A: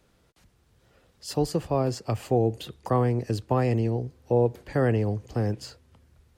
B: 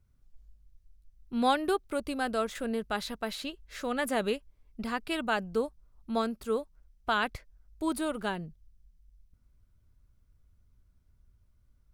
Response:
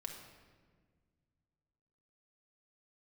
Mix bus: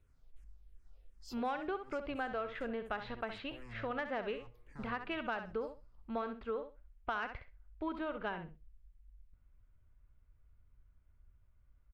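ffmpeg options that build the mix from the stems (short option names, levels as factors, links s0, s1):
-filter_complex "[0:a]asoftclip=type=hard:threshold=0.0596,asplit=2[s0][s1];[s1]afreqshift=-2.8[s2];[s0][s2]amix=inputs=2:normalize=1,volume=0.158,asplit=2[s3][s4];[s4]volume=0.141[s5];[1:a]lowpass=f=2700:w=0.5412,lowpass=f=2700:w=1.3066,equalizer=f=190:w=0.59:g=-7.5,asoftclip=type=tanh:threshold=0.126,volume=1,asplit=3[s6][s7][s8];[s7]volume=0.299[s9];[s8]apad=whole_len=281161[s10];[s3][s10]sidechaincompress=threshold=0.0141:ratio=8:attack=6.6:release=1380[s11];[2:a]atrim=start_sample=2205[s12];[s5][s12]afir=irnorm=-1:irlink=0[s13];[s9]aecho=0:1:65|130|195:1|0.16|0.0256[s14];[s11][s6][s13][s14]amix=inputs=4:normalize=0,acompressor=threshold=0.0178:ratio=4"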